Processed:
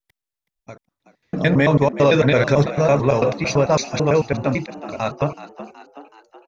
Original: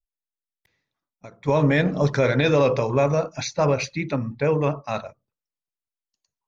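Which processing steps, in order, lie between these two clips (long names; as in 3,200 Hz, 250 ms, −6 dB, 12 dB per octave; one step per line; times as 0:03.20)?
slices reordered back to front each 111 ms, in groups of 6
echo with shifted repeats 374 ms, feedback 54%, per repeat +72 Hz, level −15 dB
level +4 dB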